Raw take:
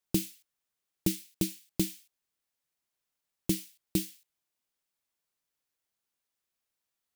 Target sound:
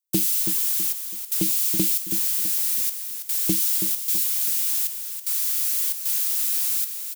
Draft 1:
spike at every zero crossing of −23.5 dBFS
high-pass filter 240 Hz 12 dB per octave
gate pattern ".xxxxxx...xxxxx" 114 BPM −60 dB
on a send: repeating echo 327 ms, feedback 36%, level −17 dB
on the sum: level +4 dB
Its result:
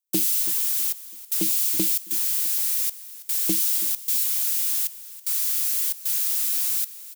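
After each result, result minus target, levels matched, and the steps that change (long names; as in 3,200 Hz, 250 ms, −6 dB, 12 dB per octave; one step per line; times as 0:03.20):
125 Hz band −6.5 dB; echo-to-direct −8.5 dB
change: high-pass filter 100 Hz 12 dB per octave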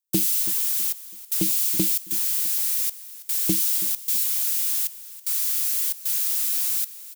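echo-to-direct −8.5 dB
change: repeating echo 327 ms, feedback 36%, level −8.5 dB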